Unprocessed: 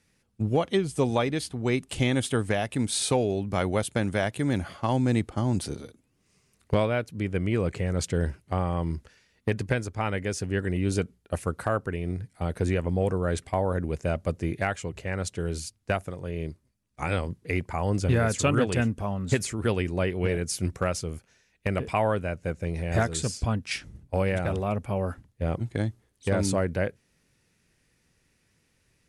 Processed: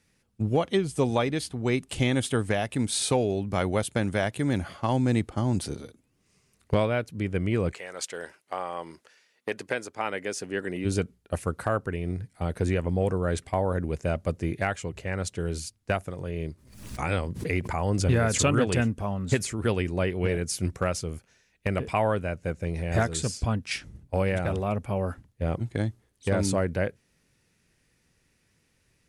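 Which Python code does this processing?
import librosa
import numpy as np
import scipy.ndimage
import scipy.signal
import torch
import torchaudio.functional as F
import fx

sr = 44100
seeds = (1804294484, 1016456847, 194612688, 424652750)

y = fx.highpass(x, sr, hz=fx.line((7.73, 780.0), (10.84, 240.0)), slope=12, at=(7.73, 10.84), fade=0.02)
y = fx.pre_swell(y, sr, db_per_s=72.0, at=(16.15, 18.85))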